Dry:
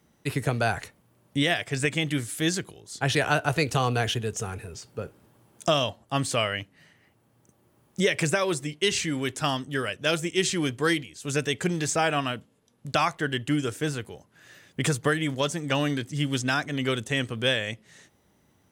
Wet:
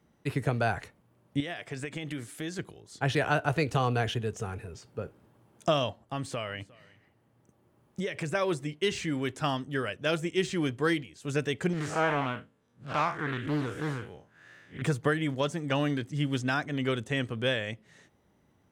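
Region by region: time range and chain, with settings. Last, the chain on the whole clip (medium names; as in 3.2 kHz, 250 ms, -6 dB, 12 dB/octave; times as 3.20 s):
1.40–2.59 s: peaking EQ 86 Hz -10.5 dB 1 oct + compression 5:1, threshold -29 dBFS
6.04–8.35 s: compression 2.5:1, threshold -29 dBFS + delay 356 ms -23 dB
11.73–14.82 s: spectral blur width 101 ms + peaking EQ 1.5 kHz +5.5 dB 1.2 oct + loudspeaker Doppler distortion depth 0.48 ms
whole clip: de-esser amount 55%; treble shelf 3.5 kHz -10 dB; trim -2 dB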